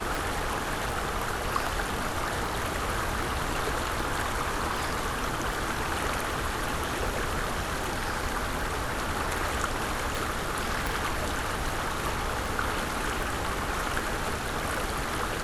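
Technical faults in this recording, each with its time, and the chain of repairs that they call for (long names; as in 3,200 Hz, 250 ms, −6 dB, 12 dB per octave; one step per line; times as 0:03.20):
scratch tick 78 rpm
0:10.87: click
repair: click removal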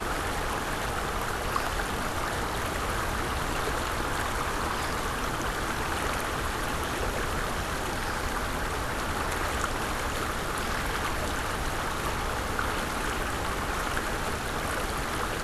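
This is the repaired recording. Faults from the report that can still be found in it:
0:10.87: click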